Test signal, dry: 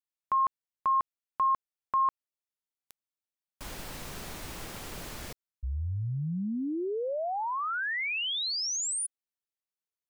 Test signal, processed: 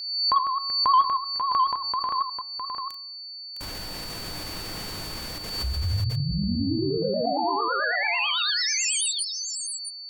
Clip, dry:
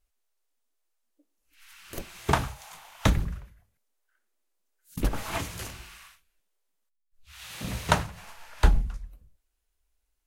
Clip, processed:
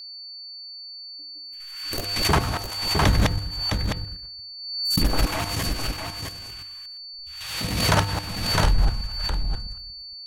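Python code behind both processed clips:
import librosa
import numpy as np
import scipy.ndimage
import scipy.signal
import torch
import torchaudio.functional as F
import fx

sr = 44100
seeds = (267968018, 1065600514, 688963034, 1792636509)

p1 = fx.reverse_delay(x, sr, ms=117, wet_db=-1.0)
p2 = fx.level_steps(p1, sr, step_db=11)
p3 = fx.fold_sine(p2, sr, drive_db=7, ceiling_db=-8.0)
p4 = fx.vibrato(p3, sr, rate_hz=9.1, depth_cents=89.0)
p5 = fx.comb_fb(p4, sr, f0_hz=100.0, decay_s=0.74, harmonics='odd', damping=0.5, mix_pct=70)
p6 = p5 + fx.echo_single(p5, sr, ms=659, db=-6.5, dry=0)
p7 = p6 + 10.0 ** (-42.0 / 20.0) * np.sin(2.0 * np.pi * 4500.0 * np.arange(len(p6)) / sr)
p8 = fx.pre_swell(p7, sr, db_per_s=47.0)
y = p8 * 10.0 ** (5.5 / 20.0)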